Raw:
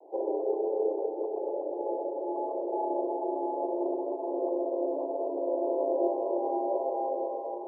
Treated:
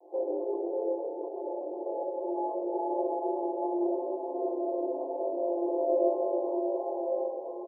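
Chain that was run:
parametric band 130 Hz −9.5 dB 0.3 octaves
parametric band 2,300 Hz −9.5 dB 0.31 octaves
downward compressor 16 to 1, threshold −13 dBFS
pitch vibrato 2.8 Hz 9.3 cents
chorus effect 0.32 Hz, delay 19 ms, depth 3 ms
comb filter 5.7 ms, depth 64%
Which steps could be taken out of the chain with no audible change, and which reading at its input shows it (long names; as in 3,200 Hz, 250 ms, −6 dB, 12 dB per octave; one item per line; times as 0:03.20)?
parametric band 130 Hz: nothing at its input below 270 Hz
parametric band 2,300 Hz: nothing at its input above 1,000 Hz
downward compressor, threshold −13 dBFS: peak of its input −16.5 dBFS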